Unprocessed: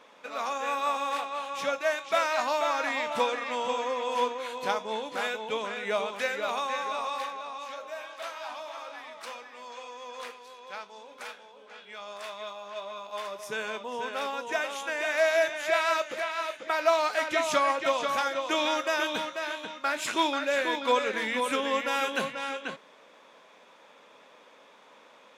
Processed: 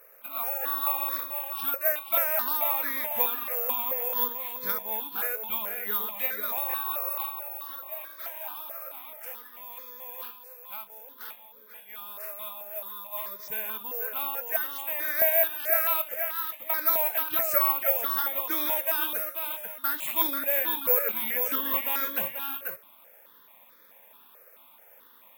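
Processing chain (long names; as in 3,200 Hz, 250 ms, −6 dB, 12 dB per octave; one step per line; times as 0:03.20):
bad sample-rate conversion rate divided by 3×, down none, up zero stuff
step-sequenced phaser 4.6 Hz 930–2,800 Hz
level −2.5 dB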